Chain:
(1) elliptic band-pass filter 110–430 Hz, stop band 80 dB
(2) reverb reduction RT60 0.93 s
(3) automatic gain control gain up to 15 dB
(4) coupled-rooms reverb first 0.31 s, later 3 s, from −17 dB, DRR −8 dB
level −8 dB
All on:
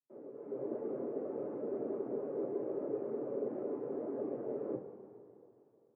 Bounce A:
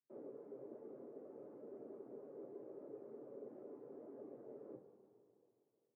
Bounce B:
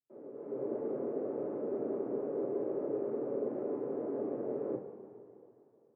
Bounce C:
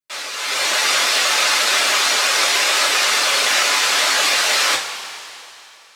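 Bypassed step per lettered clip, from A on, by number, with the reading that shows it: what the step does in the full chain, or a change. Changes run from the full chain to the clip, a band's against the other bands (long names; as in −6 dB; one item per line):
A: 3, change in momentary loudness spread −8 LU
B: 2, change in integrated loudness +2.5 LU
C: 1, change in integrated loudness +25.0 LU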